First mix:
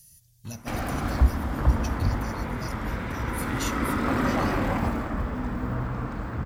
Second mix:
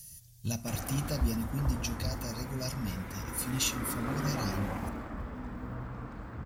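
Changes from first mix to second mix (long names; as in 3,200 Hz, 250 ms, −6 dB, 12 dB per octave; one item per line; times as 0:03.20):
speech +4.5 dB
background −10.5 dB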